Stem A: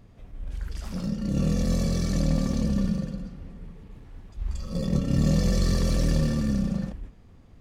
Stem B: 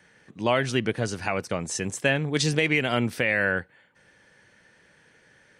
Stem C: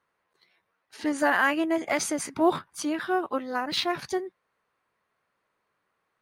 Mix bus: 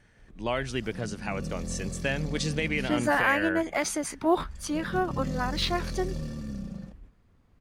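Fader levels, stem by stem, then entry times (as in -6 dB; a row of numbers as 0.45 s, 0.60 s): -11.0 dB, -6.5 dB, -1.5 dB; 0.00 s, 0.00 s, 1.85 s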